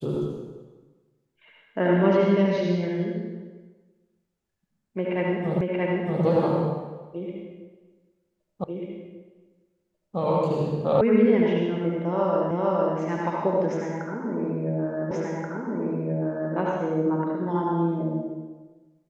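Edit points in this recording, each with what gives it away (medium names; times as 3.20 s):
5.61 s: repeat of the last 0.63 s
8.64 s: repeat of the last 1.54 s
11.01 s: sound stops dead
12.51 s: repeat of the last 0.46 s
15.11 s: repeat of the last 1.43 s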